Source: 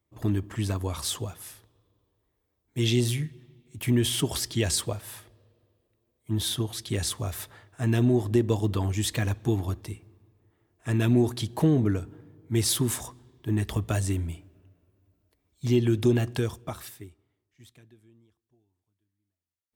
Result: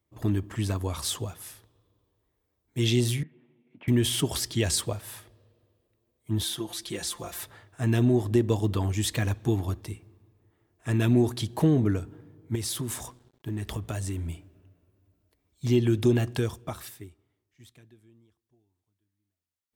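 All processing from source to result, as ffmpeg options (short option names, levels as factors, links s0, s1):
-filter_complex "[0:a]asettb=1/sr,asplit=3[s0][s1][s2];[s0]atrim=end=3.234[s3];[s1]atrim=start=3.23:end=3.88,asetpts=PTS-STARTPTS,afade=t=in:d=0.004:c=qsin,afade=t=out:st=0.646:d=0.004:c=qsin,acompressor=threshold=0.00891:ratio=1.5:attack=3.2:release=140:knee=1:detection=peak,highpass=f=210:w=0.5412,highpass=f=210:w=1.3066,equalizer=f=370:t=q:w=4:g=-6,equalizer=f=1200:t=q:w=4:g=-4,equalizer=f=1800:t=q:w=4:g=-5,lowpass=f=2300:w=0.5412,lowpass=f=2300:w=1.3066[s4];[s2]atrim=start=3.876[s5];[s3][s4]acrossfade=d=0.004:c1=hsin:c2=qsin[s6];[s6][s5]acrossfade=d=0.004:c1=qsin:c2=hsin,asettb=1/sr,asplit=3[s7][s8][s9];[s7]atrim=end=6.444[s10];[s8]atrim=start=6.44:end=7.43,asetpts=PTS-STARTPTS,afade=t=in:d=0.004:c=qsin,afade=t=out:st=0.986:d=0.004:c=qsin,equalizer=f=130:t=o:w=0.96:g=-12,acompressor=threshold=0.0141:ratio=1.5:attack=3.2:release=140:knee=1:detection=peak,aecho=1:1:5.8:0.81,atrim=end_sample=43659[s11];[s9]atrim=start=7.426[s12];[s10][s11]acrossfade=d=0.004:c1=hsin:c2=qsin[s13];[s13][s12]acrossfade=d=0.004:c1=qsin:c2=hsin,asettb=1/sr,asplit=3[s14][s15][s16];[s14]atrim=end=12.554[s17];[s15]atrim=start=12.55:end=14.26,asetpts=PTS-STARTPTS,afade=t=in:d=0.004:c=qsin,afade=t=out:st=1.706:d=0.004:c=qsin,acompressor=threshold=0.0355:ratio=3:attack=3.2:release=140:knee=1:detection=peak,aeval=exprs='sgn(val(0))*max(abs(val(0))-0.00126,0)':c=same[s18];[s16]atrim=start=14.256[s19];[s17][s18]acrossfade=d=0.004:c1=hsin:c2=qsin[s20];[s20][s19]acrossfade=d=0.004:c1=qsin:c2=hsin"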